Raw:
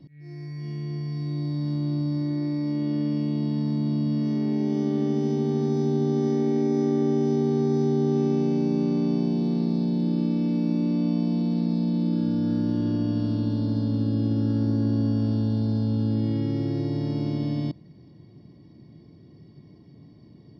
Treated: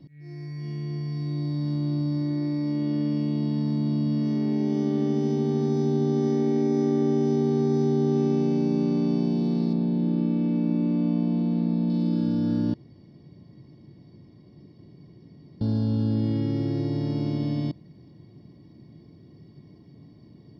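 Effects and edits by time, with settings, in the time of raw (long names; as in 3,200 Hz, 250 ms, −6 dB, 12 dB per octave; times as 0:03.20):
0:09.73–0:11.90: low-pass filter 2,800 Hz
0:12.74–0:15.61: fill with room tone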